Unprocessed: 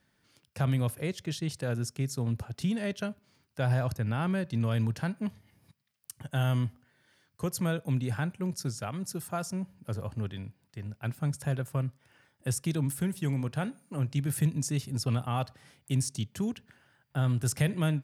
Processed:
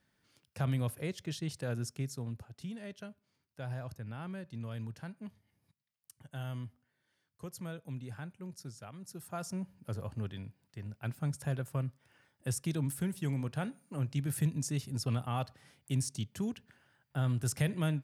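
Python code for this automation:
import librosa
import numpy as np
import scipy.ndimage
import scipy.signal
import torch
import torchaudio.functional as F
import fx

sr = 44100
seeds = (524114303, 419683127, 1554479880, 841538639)

y = fx.gain(x, sr, db=fx.line((1.96, -4.5), (2.49, -12.5), (9.02, -12.5), (9.51, -4.0)))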